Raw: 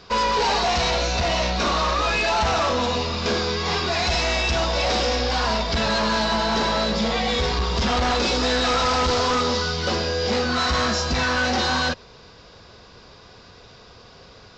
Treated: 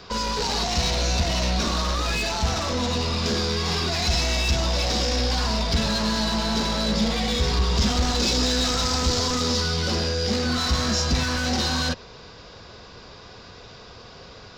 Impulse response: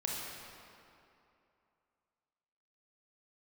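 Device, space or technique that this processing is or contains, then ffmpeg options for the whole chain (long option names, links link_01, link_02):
one-band saturation: -filter_complex "[0:a]asettb=1/sr,asplit=3[link_01][link_02][link_03];[link_01]atrim=end=7.784[link_04];[link_02]atrim=start=7.78:end=9.61,asetpts=PTS-STARTPTS,afade=type=in:duration=0.004:curve=qsin,afade=type=out:start_time=1.826:duration=0.004:curve=qsin,highshelf=frequency=7400:gain=7[link_05];[link_03]atrim=start=9.606[link_06];[link_04][link_05]acrossfade=duration=0.004:curve1=hsin:curve2=qsin[link_07];[link_07][link_06]acrossfade=duration=0.004:curve1=qsin:curve2=hsin,acrossover=split=280|4100[link_08][link_09][link_10];[link_09]asoftclip=type=tanh:threshold=-31.5dB[link_11];[link_08][link_11][link_10]amix=inputs=3:normalize=0,volume=3dB"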